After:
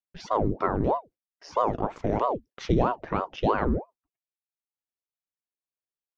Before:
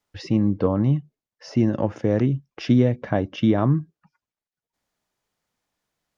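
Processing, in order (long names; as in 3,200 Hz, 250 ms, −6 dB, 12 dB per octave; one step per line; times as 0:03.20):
noise gate with hold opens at −45 dBFS
ring modulator whose carrier an LFO sweeps 470 Hz, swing 85%, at 3.1 Hz
level −2.5 dB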